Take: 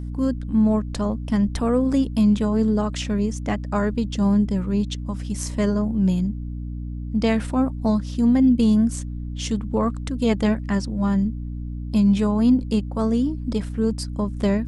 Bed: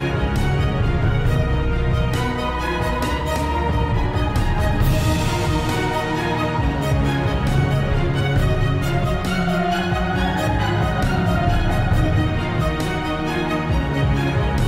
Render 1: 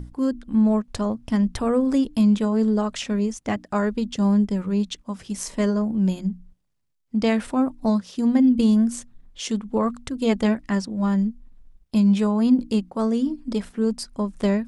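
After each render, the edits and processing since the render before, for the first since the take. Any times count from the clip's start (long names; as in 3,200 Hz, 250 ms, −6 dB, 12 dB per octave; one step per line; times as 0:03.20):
mains-hum notches 60/120/180/240/300 Hz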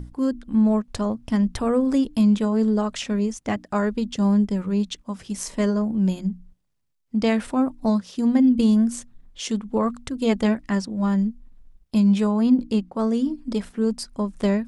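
0:12.41–0:13.07: high-shelf EQ 6,800 Hz −7.5 dB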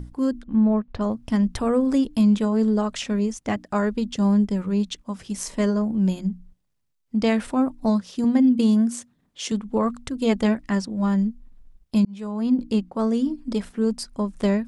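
0:00.44–0:01.01: high-frequency loss of the air 310 metres
0:08.24–0:09.52: high-pass filter 140 Hz
0:12.05–0:12.71: fade in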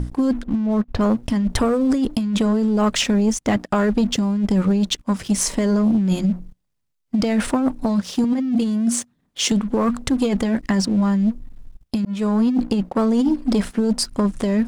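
compressor whose output falls as the input rises −24 dBFS, ratio −1
leveller curve on the samples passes 2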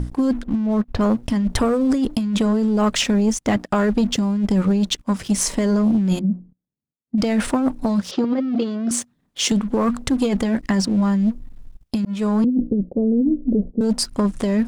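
0:06.19–0:07.18: resonant band-pass 230 Hz, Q 1.3
0:08.11–0:08.91: loudspeaker in its box 150–5,000 Hz, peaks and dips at 210 Hz −5 dB, 370 Hz +8 dB, 560 Hz +9 dB, 1,300 Hz +8 dB
0:12.44–0:13.81: Butterworth low-pass 540 Hz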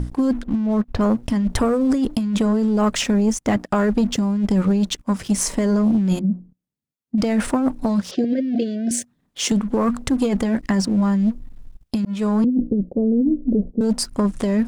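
dynamic equaliser 3,600 Hz, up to −4 dB, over −38 dBFS, Q 1.1
0:08.15–0:09.04: gain on a spectral selection 750–1,500 Hz −27 dB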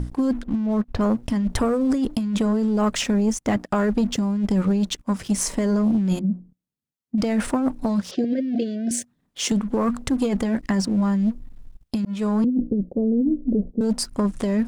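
level −2.5 dB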